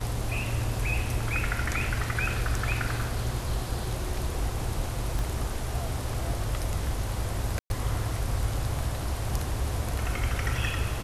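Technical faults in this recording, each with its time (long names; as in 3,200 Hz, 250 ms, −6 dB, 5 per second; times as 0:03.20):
0:05.19: click
0:07.59–0:07.70: drop-out 111 ms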